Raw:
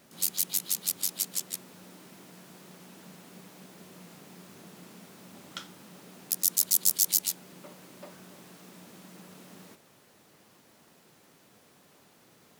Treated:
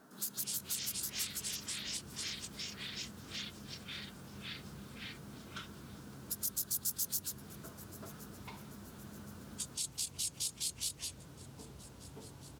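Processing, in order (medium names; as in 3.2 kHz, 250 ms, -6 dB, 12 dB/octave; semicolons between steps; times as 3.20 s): on a send: feedback delay 1068 ms, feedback 46%, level -23 dB; on the sum: formant-preserving pitch shift +2 st; resonant high shelf 1.8 kHz -6.5 dB, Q 3; ever faster or slower copies 139 ms, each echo -7 st, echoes 3; in parallel at +1 dB: compression, threshold -38 dBFS, peak gain reduction 11.5 dB; on the sum: dynamic bell 760 Hz, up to -8 dB, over -56 dBFS, Q 0.82; trim -7 dB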